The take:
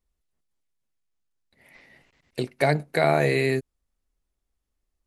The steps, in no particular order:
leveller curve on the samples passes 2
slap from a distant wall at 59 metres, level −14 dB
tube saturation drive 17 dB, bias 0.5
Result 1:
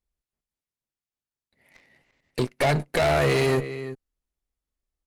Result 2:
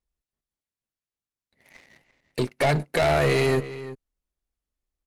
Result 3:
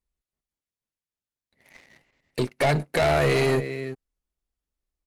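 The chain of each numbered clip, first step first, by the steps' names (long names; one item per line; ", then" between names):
leveller curve on the samples, then slap from a distant wall, then tube saturation
tube saturation, then leveller curve on the samples, then slap from a distant wall
slap from a distant wall, then tube saturation, then leveller curve on the samples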